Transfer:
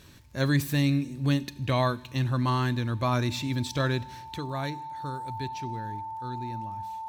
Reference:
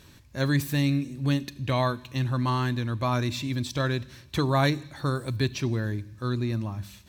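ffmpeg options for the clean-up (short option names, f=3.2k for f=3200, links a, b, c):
-af "adeclick=t=4,bandreject=f=890:w=30,asetnsamples=n=441:p=0,asendcmd='4.34 volume volume 10dB',volume=0dB"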